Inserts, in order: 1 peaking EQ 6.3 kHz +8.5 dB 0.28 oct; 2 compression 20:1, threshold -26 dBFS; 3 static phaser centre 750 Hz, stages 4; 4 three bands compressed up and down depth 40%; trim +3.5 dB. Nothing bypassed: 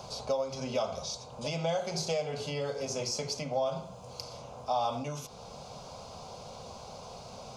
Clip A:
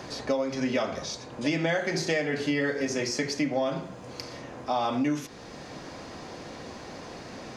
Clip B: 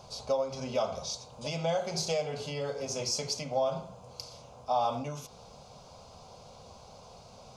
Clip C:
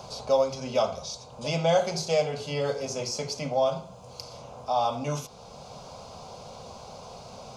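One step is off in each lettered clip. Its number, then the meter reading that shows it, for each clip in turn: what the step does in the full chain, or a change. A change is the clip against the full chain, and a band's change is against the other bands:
3, 2 kHz band +11.0 dB; 4, momentary loudness spread change +7 LU; 2, mean gain reduction 2.0 dB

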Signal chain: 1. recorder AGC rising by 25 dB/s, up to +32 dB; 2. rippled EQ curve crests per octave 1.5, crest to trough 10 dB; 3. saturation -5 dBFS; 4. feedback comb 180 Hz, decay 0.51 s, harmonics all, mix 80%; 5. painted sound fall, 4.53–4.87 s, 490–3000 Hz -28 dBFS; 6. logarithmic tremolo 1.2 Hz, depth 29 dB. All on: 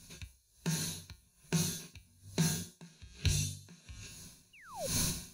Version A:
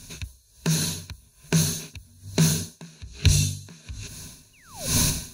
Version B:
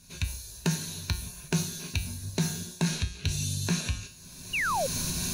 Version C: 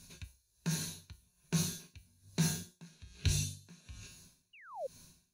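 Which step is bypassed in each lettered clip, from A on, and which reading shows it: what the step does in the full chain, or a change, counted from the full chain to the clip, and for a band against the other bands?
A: 4, 1 kHz band -2.5 dB; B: 6, momentary loudness spread change -13 LU; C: 1, loudness change -1.5 LU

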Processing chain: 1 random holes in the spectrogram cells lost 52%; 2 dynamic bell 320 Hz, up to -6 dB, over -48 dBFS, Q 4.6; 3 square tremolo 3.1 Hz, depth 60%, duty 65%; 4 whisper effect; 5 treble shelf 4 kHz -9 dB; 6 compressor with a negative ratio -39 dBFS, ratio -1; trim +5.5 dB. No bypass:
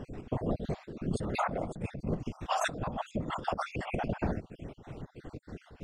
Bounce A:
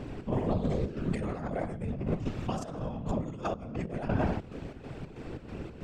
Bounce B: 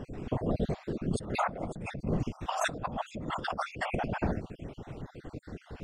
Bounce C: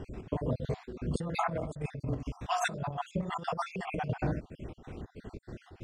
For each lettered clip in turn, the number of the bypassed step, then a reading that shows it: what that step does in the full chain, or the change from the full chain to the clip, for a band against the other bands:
1, 125 Hz band +8.0 dB; 3, momentary loudness spread change -2 LU; 4, 125 Hz band +2.0 dB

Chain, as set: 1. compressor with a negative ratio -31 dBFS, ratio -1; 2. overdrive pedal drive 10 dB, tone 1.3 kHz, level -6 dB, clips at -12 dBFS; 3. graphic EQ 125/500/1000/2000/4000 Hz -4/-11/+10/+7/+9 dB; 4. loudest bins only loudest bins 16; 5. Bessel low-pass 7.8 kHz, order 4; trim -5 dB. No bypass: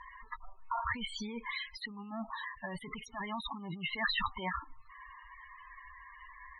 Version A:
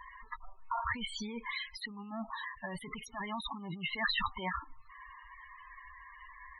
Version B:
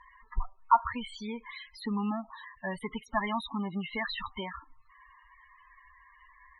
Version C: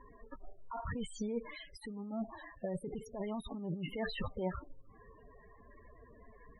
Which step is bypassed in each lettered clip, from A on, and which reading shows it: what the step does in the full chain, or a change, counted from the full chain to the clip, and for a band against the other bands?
5, 8 kHz band +2.5 dB; 1, crest factor change +4.0 dB; 3, 2 kHz band -12.5 dB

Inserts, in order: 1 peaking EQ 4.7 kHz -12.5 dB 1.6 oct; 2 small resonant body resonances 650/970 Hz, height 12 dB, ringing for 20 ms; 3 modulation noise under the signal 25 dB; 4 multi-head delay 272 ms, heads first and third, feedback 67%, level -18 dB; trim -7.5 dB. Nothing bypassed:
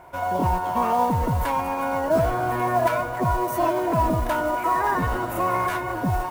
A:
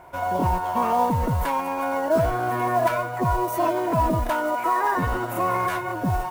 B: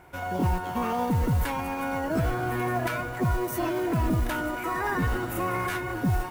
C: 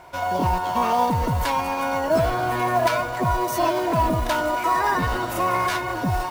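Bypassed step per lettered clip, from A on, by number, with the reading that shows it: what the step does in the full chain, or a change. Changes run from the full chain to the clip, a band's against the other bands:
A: 4, echo-to-direct -12.5 dB to none; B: 2, 1 kHz band -7.0 dB; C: 1, 4 kHz band +7.5 dB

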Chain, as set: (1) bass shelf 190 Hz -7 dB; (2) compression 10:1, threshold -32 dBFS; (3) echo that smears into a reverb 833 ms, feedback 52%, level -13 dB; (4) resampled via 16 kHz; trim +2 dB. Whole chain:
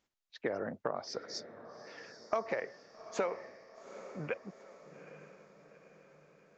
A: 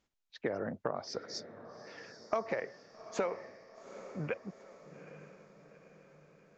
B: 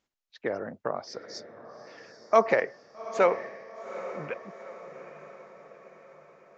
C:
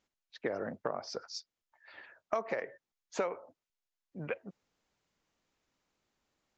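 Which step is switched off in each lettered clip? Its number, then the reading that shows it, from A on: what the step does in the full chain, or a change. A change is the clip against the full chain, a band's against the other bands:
1, 125 Hz band +4.0 dB; 2, mean gain reduction 4.5 dB; 3, momentary loudness spread change -3 LU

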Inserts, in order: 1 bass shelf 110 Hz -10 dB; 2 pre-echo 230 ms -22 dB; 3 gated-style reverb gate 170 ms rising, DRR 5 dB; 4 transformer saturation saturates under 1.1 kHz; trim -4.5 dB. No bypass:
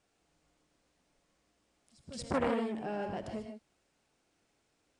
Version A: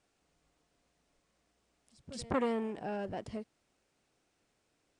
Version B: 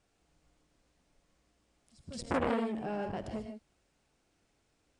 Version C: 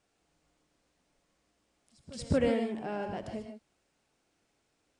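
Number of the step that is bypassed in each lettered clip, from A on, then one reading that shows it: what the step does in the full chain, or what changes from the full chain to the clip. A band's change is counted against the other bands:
3, momentary loudness spread change -2 LU; 1, 8 kHz band -1.5 dB; 4, 125 Hz band +5.5 dB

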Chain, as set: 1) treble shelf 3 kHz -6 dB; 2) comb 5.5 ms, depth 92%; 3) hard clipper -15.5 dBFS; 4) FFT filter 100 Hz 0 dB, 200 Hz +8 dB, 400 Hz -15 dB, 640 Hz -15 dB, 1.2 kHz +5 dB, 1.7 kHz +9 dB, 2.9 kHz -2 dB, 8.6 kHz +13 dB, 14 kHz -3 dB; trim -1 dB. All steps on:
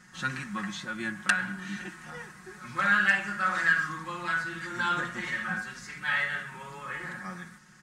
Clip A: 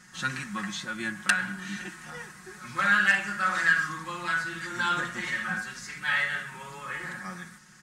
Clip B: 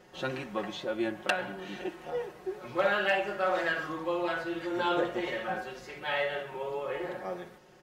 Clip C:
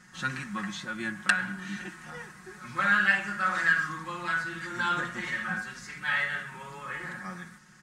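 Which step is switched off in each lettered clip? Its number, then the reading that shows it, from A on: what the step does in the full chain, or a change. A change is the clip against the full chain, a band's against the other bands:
1, 8 kHz band +4.0 dB; 4, momentary loudness spread change -6 LU; 3, distortion -29 dB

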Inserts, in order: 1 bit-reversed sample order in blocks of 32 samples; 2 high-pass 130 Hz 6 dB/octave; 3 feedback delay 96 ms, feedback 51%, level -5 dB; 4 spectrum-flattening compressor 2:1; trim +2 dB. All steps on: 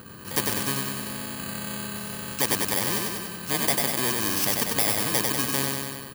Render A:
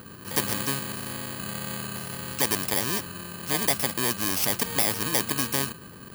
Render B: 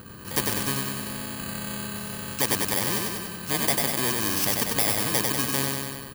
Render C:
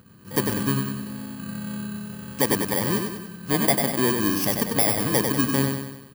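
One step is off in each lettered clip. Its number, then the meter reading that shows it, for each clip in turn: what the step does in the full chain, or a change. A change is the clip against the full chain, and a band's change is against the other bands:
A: 3, crest factor change +1.5 dB; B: 2, 125 Hz band +1.5 dB; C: 4, 250 Hz band +7.0 dB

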